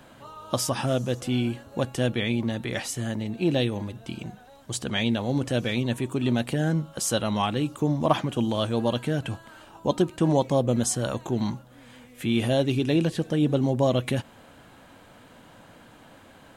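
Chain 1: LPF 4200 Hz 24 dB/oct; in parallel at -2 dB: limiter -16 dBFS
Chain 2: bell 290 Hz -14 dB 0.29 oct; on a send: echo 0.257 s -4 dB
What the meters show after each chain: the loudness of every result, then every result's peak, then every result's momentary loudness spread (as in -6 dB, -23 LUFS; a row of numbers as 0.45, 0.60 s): -22.0, -26.5 LUFS; -5.5, -8.5 dBFS; 9, 10 LU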